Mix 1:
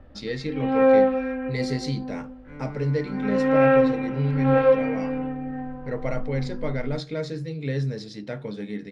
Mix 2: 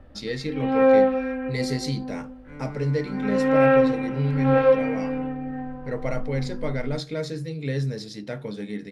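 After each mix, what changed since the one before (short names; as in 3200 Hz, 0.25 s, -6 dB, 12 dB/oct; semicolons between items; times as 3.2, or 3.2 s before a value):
master: remove air absorption 67 m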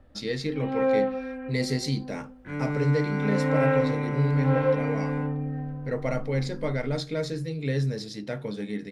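first sound -7.0 dB; second sound +9.5 dB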